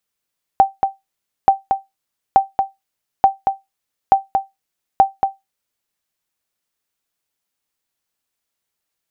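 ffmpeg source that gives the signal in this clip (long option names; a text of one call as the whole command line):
ffmpeg -f lavfi -i "aevalsrc='0.841*(sin(2*PI*780*mod(t,0.88))*exp(-6.91*mod(t,0.88)/0.18)+0.501*sin(2*PI*780*max(mod(t,0.88)-0.23,0))*exp(-6.91*max(mod(t,0.88)-0.23,0)/0.18))':duration=5.28:sample_rate=44100" out.wav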